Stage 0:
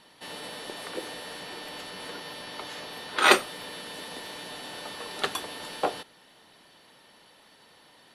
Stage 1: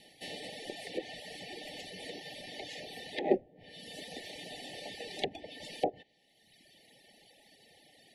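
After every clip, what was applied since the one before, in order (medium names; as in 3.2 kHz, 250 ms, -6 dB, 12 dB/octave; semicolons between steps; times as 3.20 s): reverb removal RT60 1.3 s; low-pass that closes with the level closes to 500 Hz, closed at -24.5 dBFS; Chebyshev band-stop 830–1800 Hz, order 5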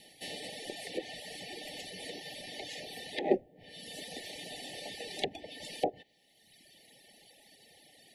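treble shelf 6.5 kHz +7.5 dB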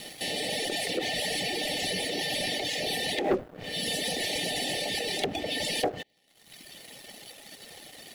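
in parallel at +2 dB: compressor with a negative ratio -46 dBFS, ratio -0.5; on the sum: waveshaping leveller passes 3; trim -5 dB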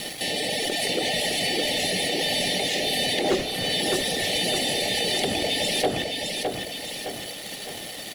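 in parallel at -2.5 dB: compressor with a negative ratio -37 dBFS, ratio -1; on the sum: feedback delay 612 ms, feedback 50%, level -4 dB; trim +1.5 dB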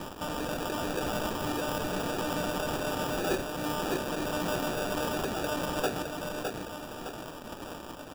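sample-rate reducer 2.1 kHz, jitter 0%; trim -6.5 dB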